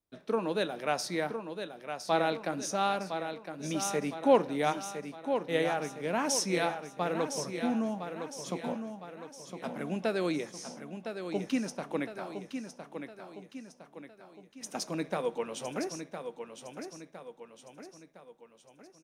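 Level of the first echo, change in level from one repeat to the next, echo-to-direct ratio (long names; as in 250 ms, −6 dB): −8.0 dB, −6.5 dB, −7.0 dB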